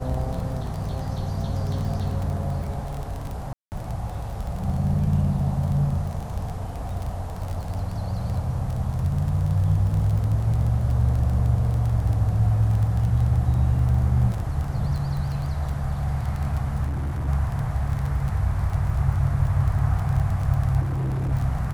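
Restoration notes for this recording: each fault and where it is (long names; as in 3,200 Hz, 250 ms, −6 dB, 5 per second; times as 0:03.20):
surface crackle 20 per second −27 dBFS
0:03.53–0:03.72: drop-out 189 ms
0:16.86–0:17.29: clipping −23.5 dBFS
0:20.80–0:21.33: clipping −22.5 dBFS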